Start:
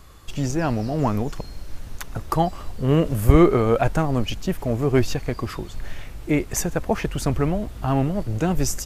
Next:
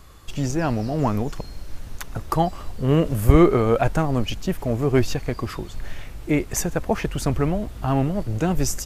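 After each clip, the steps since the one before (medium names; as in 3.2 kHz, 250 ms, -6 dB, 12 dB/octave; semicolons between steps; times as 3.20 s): no audible change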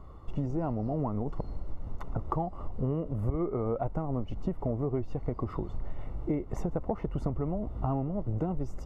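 Savitzky-Golay filter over 65 samples; compression 10:1, threshold -27 dBFS, peak gain reduction 20.5 dB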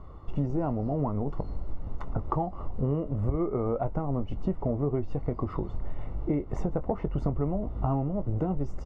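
distance through air 78 m; doubling 21 ms -12.5 dB; trim +2.5 dB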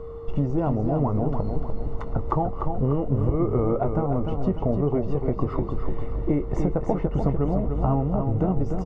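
whistle 460 Hz -40 dBFS; feedback delay 297 ms, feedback 44%, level -6 dB; trim +4.5 dB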